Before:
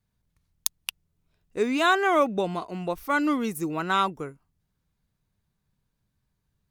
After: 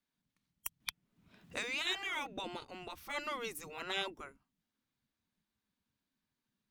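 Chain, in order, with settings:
drawn EQ curve 220 Hz 0 dB, 420 Hz −11 dB, 3,300 Hz −3 dB, 9,900 Hz −10 dB
gate on every frequency bin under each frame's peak −10 dB weak
0:00.80–0:01.87: multiband upward and downward compressor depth 100%
level +1 dB

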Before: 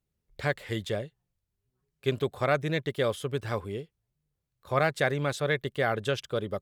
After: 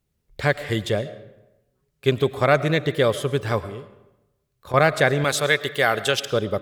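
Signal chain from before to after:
0:03.62–0:04.74: downward compressor, threshold −41 dBFS, peak gain reduction 12.5 dB
0:05.24–0:06.30: spectral tilt +2.5 dB per octave
convolution reverb RT60 0.95 s, pre-delay 70 ms, DRR 14.5 dB
level +8 dB

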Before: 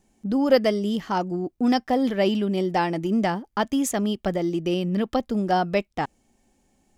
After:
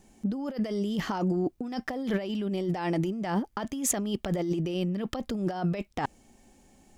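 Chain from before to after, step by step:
compressor whose output falls as the input rises −30 dBFS, ratio −1

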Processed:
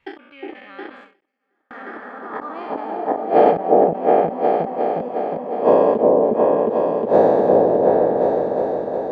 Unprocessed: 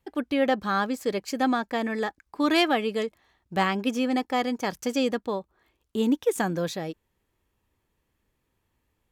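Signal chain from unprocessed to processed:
peak hold with a decay on every bin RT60 2.76 s
spectral tilt −4 dB per octave
gate with flip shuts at −14 dBFS, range −28 dB
echo whose low-pass opens from repeat to repeat 360 ms, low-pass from 750 Hz, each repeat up 2 octaves, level 0 dB
band-pass filter sweep 2,400 Hz → 640 Hz, 0:01.27–0:03.35
0:01.20–0:01.71: gate with flip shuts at −56 dBFS, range −37 dB
0:02.85–0:03.57: double-tracking delay 40 ms −3.5 dB
boost into a limiter +22.5 dB
every ending faded ahead of time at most 150 dB per second
level −1 dB

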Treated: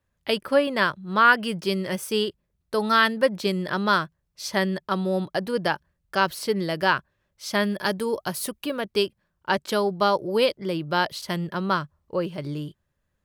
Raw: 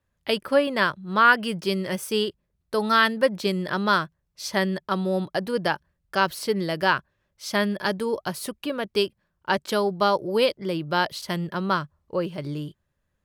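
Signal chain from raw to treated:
0:07.65–0:08.81: high-shelf EQ 8,500 Hz +8 dB

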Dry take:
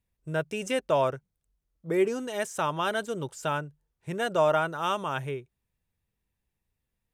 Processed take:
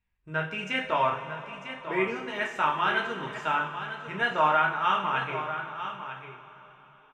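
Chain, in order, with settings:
drawn EQ curve 110 Hz 0 dB, 610 Hz −6 dB, 890 Hz +4 dB, 2,400 Hz +7 dB, 9,300 Hz −19 dB
on a send: single-tap delay 948 ms −10.5 dB
on the sum: coupled-rooms reverb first 0.43 s, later 4.4 s, from −18 dB, DRR −1.5 dB
level −3.5 dB

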